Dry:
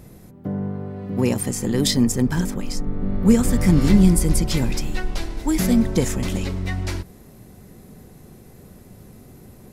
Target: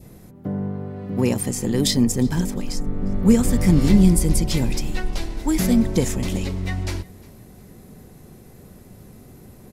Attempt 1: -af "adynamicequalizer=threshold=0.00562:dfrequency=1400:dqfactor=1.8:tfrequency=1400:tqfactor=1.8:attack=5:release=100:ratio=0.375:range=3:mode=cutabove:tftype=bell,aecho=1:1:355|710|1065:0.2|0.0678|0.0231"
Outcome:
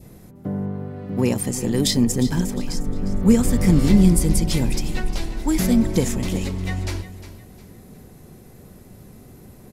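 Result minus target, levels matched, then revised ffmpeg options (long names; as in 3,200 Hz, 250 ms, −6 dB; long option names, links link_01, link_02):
echo-to-direct +10.5 dB
-af "adynamicequalizer=threshold=0.00562:dfrequency=1400:dqfactor=1.8:tfrequency=1400:tqfactor=1.8:attack=5:release=100:ratio=0.375:range=3:mode=cutabove:tftype=bell,aecho=1:1:355|710:0.0596|0.0203"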